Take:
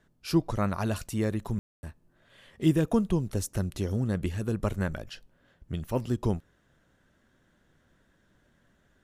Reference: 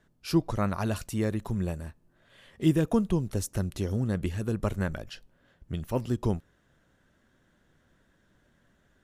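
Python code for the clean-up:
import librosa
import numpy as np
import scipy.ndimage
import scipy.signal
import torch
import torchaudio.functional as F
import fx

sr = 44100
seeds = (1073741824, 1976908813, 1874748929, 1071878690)

y = fx.fix_ambience(x, sr, seeds[0], print_start_s=6.83, print_end_s=7.33, start_s=1.59, end_s=1.83)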